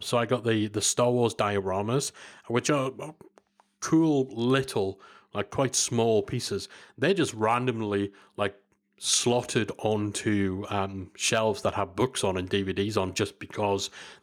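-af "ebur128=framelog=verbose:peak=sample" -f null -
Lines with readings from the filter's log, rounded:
Integrated loudness:
  I:         -27.3 LUFS
  Threshold: -37.7 LUFS
Loudness range:
  LRA:         1.4 LU
  Threshold: -47.7 LUFS
  LRA low:   -28.3 LUFS
  LRA high:  -26.9 LUFS
Sample peak:
  Peak:      -11.9 dBFS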